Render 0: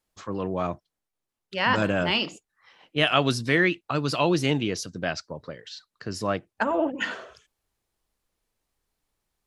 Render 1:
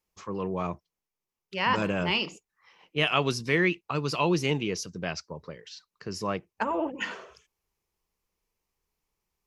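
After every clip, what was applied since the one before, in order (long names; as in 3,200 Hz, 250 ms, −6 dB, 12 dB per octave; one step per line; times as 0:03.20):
EQ curve with evenly spaced ripples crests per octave 0.79, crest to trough 6 dB
level −3.5 dB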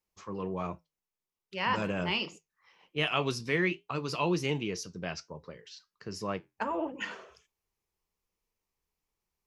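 flanger 1.3 Hz, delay 8.4 ms, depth 3.4 ms, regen −72%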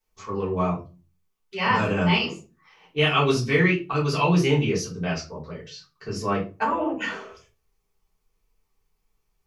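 rectangular room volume 120 cubic metres, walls furnished, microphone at 3.5 metres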